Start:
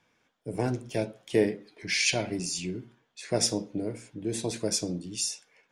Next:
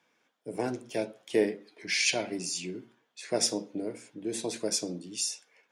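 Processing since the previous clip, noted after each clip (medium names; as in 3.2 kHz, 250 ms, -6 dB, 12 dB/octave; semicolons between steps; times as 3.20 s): high-pass 230 Hz 12 dB/octave; trim -1 dB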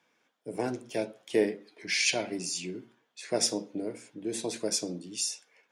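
no audible change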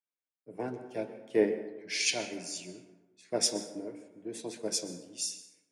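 plate-style reverb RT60 1.9 s, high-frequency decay 0.35×, pre-delay 115 ms, DRR 8 dB; three bands expanded up and down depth 70%; trim -5.5 dB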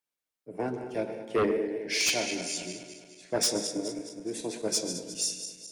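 backward echo that repeats 105 ms, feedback 70%, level -11 dB; sine folder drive 8 dB, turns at -13 dBFS; trim -7 dB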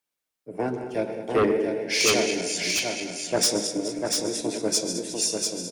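delay 694 ms -4 dB; trim +4.5 dB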